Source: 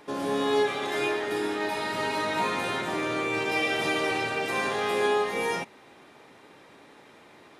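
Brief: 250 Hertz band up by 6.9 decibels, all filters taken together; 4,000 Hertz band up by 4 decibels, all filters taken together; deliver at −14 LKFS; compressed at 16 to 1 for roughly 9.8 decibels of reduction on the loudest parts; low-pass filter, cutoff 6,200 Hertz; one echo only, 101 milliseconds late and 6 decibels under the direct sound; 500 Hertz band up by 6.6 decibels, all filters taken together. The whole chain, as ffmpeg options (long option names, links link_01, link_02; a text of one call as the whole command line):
ffmpeg -i in.wav -af "lowpass=6200,equalizer=frequency=250:width_type=o:gain=6.5,equalizer=frequency=500:width_type=o:gain=6,equalizer=frequency=4000:width_type=o:gain=5.5,acompressor=threshold=-23dB:ratio=16,aecho=1:1:101:0.501,volume=12dB" out.wav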